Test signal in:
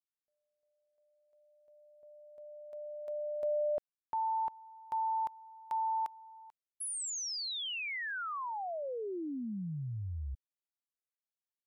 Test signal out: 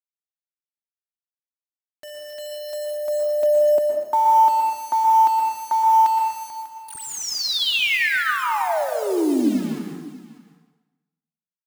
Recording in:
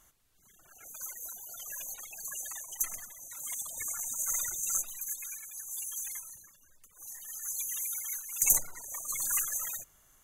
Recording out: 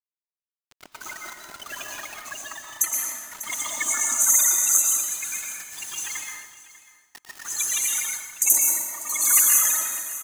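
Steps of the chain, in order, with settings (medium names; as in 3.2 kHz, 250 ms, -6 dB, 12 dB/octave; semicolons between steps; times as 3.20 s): high-pass 220 Hz 24 dB/octave; comb 3.3 ms, depth 38%; dynamic bell 1.1 kHz, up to -5 dB, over -48 dBFS, Q 2.1; level-controlled noise filter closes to 1 kHz, open at -28.5 dBFS; bit crusher 9-bit; peaking EQ 510 Hz -10.5 dB 0.27 oct; delay 595 ms -17.5 dB; plate-style reverb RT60 1.1 s, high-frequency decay 0.85×, pre-delay 105 ms, DRR 1 dB; level rider gain up to 17 dB; trim -1 dB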